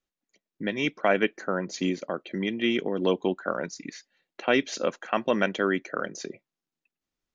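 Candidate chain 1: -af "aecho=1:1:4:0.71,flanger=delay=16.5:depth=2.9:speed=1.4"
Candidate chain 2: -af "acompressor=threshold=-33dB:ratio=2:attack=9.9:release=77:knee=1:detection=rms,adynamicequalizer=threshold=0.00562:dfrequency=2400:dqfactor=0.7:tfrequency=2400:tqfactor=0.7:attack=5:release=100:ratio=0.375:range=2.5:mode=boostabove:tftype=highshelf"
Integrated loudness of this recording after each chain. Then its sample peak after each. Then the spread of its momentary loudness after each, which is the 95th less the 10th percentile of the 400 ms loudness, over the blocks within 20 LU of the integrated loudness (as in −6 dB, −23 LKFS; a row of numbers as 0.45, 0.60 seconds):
−29.0, −33.5 LKFS; −10.5, −14.5 dBFS; 11, 8 LU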